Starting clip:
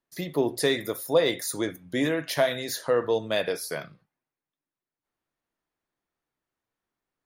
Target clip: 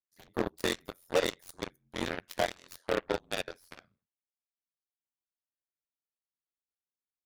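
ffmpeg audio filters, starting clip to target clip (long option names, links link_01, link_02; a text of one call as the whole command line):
ffmpeg -i in.wav -af "aeval=exprs='val(0)*sin(2*PI*44*n/s)':channel_layout=same,aeval=exprs='0.299*(cos(1*acos(clip(val(0)/0.299,-1,1)))-cos(1*PI/2))+0.0266*(cos(2*acos(clip(val(0)/0.299,-1,1)))-cos(2*PI/2))+0.00473*(cos(3*acos(clip(val(0)/0.299,-1,1)))-cos(3*PI/2))+0.00266*(cos(5*acos(clip(val(0)/0.299,-1,1)))-cos(5*PI/2))+0.0473*(cos(7*acos(clip(val(0)/0.299,-1,1)))-cos(7*PI/2))':channel_layout=same,aeval=exprs='0.168*(abs(mod(val(0)/0.168+3,4)-2)-1)':channel_layout=same,volume=-1dB" out.wav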